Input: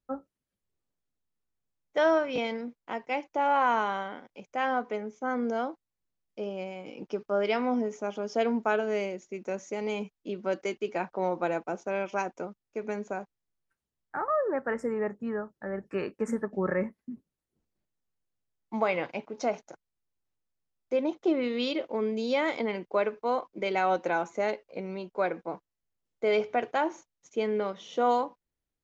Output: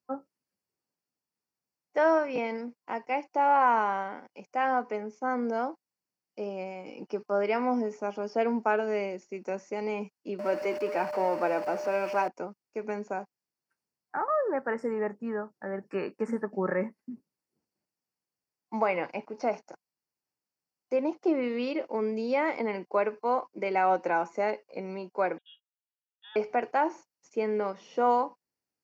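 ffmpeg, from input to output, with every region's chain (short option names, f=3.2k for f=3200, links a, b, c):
-filter_complex "[0:a]asettb=1/sr,asplit=3[a][b][c];[a]atrim=end=10.394[d];[b]atrim=start=10.39:end=12.28,asetpts=PTS-STARTPTS,afade=t=in:d=0.004:c=qsin,afade=t=out:st=1.886:d=0.004:c=qsin,aeval=exprs='val(0)+0.5*0.02*sgn(val(0))':c=same,highpass=f=220:p=1,aeval=exprs='val(0)+0.0224*sin(2*PI*600*n/s)':c=same[e];[c]atrim=start=12.276[f];[d][e]acrossfade=d=0.004:c1=hsin:c2=qsin[g];[g][f]acrossfade=d=0.004:c1=qsin:c2=hsin,asettb=1/sr,asplit=3[h][i][j];[h]atrim=end=25.384[k];[i]atrim=start=25.38:end=26.36,asetpts=PTS-STARTPTS,afade=t=in:d=0.004:c=qsin,afade=t=out:st=0.976:d=0.004:c=qsin,asplit=3[l][m][n];[l]bandpass=f=730:t=q:w=8,volume=0dB[o];[m]bandpass=f=1.09k:t=q:w=8,volume=-6dB[p];[n]bandpass=f=2.44k:t=q:w=8,volume=-9dB[q];[o][p][q]amix=inputs=3:normalize=0,lowpass=f=3.4k:t=q:w=0.5098,lowpass=f=3.4k:t=q:w=0.6013,lowpass=f=3.4k:t=q:w=0.9,lowpass=f=3.4k:t=q:w=2.563,afreqshift=-4000[r];[j]atrim=start=26.356[s];[k][r]acrossfade=d=0.004:c1=hsin:c2=qsin[t];[t][s]acrossfade=d=0.004:c1=qsin:c2=hsin,highpass=160,acrossover=split=3300[u][v];[v]acompressor=threshold=-58dB:ratio=4:attack=1:release=60[w];[u][w]amix=inputs=2:normalize=0,superequalizer=9b=1.41:13b=0.355:14b=1.78"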